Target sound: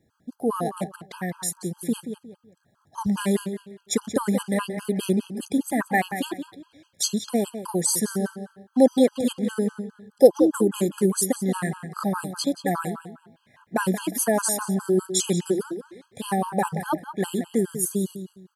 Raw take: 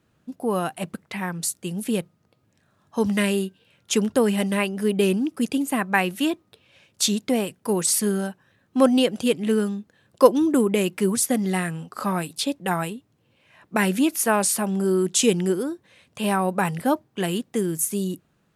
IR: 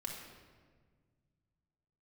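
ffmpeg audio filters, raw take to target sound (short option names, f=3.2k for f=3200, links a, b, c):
-filter_complex "[0:a]equalizer=f=2.6k:w=4.2:g=-14.5,asplit=2[a][b];[b]adelay=179,lowpass=f=4.6k:p=1,volume=-10dB,asplit=2[c][d];[d]adelay=179,lowpass=f=4.6k:p=1,volume=0.28,asplit=2[e][f];[f]adelay=179,lowpass=f=4.6k:p=1,volume=0.28[g];[c][e][g]amix=inputs=3:normalize=0[h];[a][h]amix=inputs=2:normalize=0,afftfilt=real='re*gt(sin(2*PI*4.9*pts/sr)*(1-2*mod(floor(b*sr/1024/830),2)),0)':imag='im*gt(sin(2*PI*4.9*pts/sr)*(1-2*mod(floor(b*sr/1024/830),2)),0)':win_size=1024:overlap=0.75,volume=1.5dB"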